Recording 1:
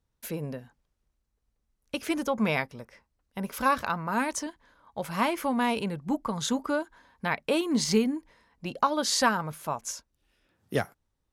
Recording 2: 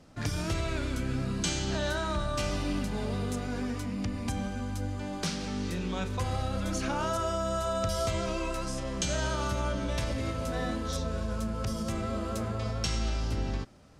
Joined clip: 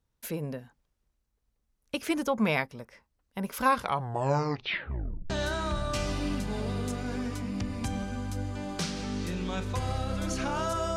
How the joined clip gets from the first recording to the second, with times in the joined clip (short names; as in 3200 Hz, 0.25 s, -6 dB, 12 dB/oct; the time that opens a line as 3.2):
recording 1
3.65 tape stop 1.65 s
5.3 switch to recording 2 from 1.74 s